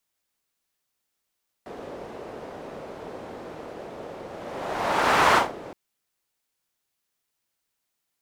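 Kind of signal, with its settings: whoosh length 4.07 s, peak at 3.69 s, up 1.16 s, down 0.20 s, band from 500 Hz, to 1.1 kHz, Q 1.4, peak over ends 21 dB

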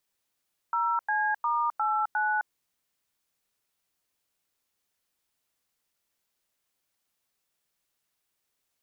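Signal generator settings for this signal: DTMF "0C*89", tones 261 ms, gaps 94 ms, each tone -26.5 dBFS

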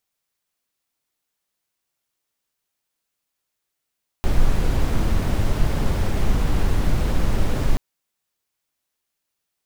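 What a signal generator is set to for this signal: noise brown, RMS -17 dBFS 3.53 s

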